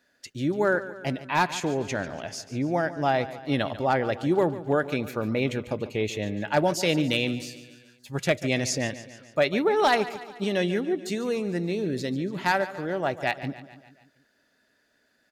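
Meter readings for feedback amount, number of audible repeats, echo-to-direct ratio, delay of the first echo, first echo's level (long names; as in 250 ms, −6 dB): 56%, 4, −13.5 dB, 144 ms, −15.0 dB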